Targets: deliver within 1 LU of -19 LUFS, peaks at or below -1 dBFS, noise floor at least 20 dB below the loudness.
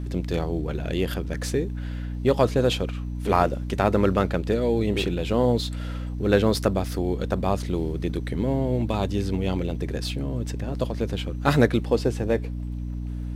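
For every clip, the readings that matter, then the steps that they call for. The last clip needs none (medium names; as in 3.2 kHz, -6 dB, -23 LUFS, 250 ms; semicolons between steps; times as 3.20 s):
tick rate 47 per s; hum 60 Hz; highest harmonic 300 Hz; hum level -28 dBFS; loudness -25.0 LUFS; peak level -4.0 dBFS; loudness target -19.0 LUFS
-> de-click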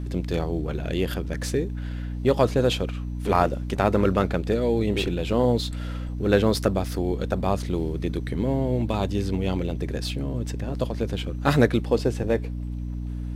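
tick rate 0.37 per s; hum 60 Hz; highest harmonic 300 Hz; hum level -28 dBFS
-> de-hum 60 Hz, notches 5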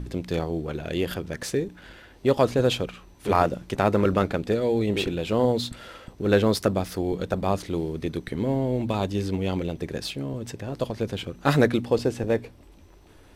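hum not found; loudness -26.0 LUFS; peak level -4.5 dBFS; loudness target -19.0 LUFS
-> trim +7 dB; peak limiter -1 dBFS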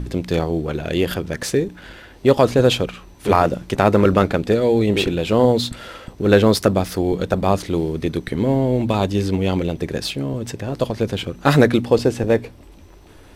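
loudness -19.0 LUFS; peak level -1.0 dBFS; noise floor -44 dBFS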